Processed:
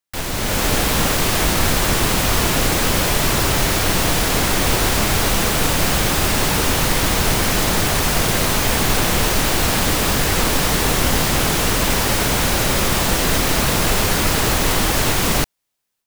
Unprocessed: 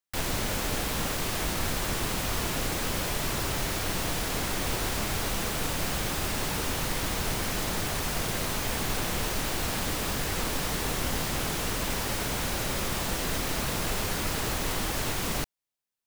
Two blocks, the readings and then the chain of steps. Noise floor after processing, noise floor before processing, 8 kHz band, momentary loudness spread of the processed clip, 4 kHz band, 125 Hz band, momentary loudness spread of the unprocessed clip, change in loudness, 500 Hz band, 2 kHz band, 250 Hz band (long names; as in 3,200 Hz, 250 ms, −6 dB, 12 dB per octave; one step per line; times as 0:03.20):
−25 dBFS, −32 dBFS, +12.5 dB, 0 LU, +12.5 dB, +12.5 dB, 0 LU, +12.5 dB, +12.5 dB, +12.5 dB, +12.5 dB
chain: automatic gain control gain up to 8 dB
level +4.5 dB